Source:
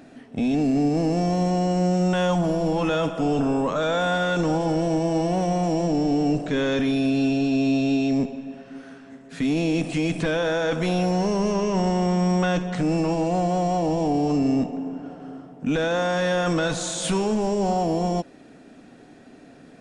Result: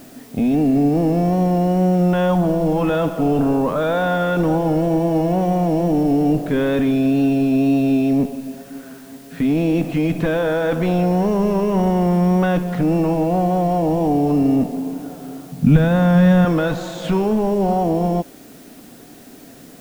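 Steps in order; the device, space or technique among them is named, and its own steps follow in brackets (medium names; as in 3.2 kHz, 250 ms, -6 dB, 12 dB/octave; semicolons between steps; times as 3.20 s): cassette deck with a dirty head (tape spacing loss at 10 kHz 27 dB; wow and flutter 28 cents; white noise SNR 30 dB); 15.52–16.45 s: resonant low shelf 240 Hz +11 dB, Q 1.5; trim +6 dB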